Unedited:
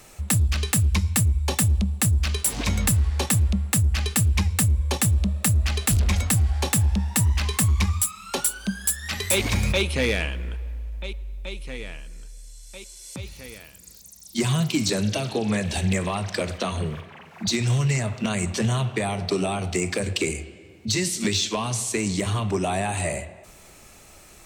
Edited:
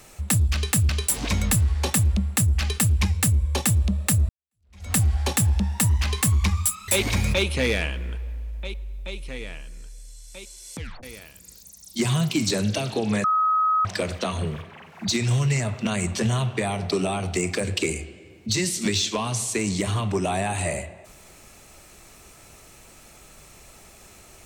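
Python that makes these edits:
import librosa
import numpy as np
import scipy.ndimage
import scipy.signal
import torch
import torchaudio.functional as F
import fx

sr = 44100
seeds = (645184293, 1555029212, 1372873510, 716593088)

y = fx.edit(x, sr, fx.cut(start_s=0.89, length_s=1.36),
    fx.fade_in_span(start_s=5.65, length_s=0.64, curve='exp'),
    fx.cut(start_s=8.24, length_s=1.03),
    fx.tape_stop(start_s=13.16, length_s=0.26),
    fx.bleep(start_s=15.63, length_s=0.61, hz=1270.0, db=-17.5), tone=tone)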